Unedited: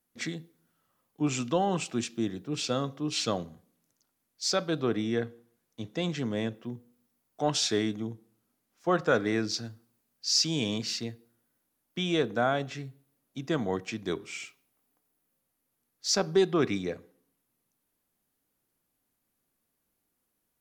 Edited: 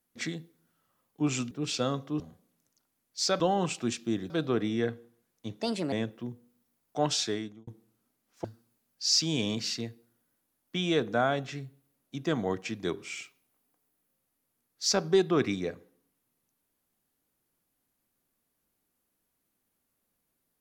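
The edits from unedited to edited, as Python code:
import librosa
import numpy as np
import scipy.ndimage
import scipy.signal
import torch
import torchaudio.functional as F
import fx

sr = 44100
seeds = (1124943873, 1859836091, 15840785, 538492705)

y = fx.edit(x, sr, fx.move(start_s=1.51, length_s=0.9, to_s=4.64),
    fx.cut(start_s=3.1, length_s=0.34),
    fx.speed_span(start_s=5.96, length_s=0.4, speed=1.32),
    fx.fade_out_span(start_s=7.52, length_s=0.59),
    fx.cut(start_s=8.88, length_s=0.79), tone=tone)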